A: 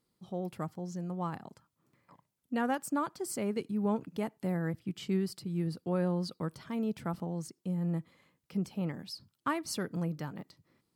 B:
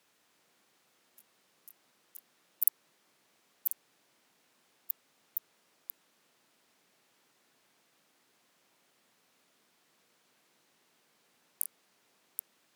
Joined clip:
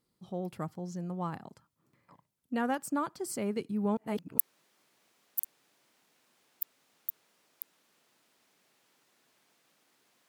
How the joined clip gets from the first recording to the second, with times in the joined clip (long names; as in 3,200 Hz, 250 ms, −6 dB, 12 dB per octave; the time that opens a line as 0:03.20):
A
0:03.97–0:04.38: reverse
0:04.38: continue with B from 0:02.66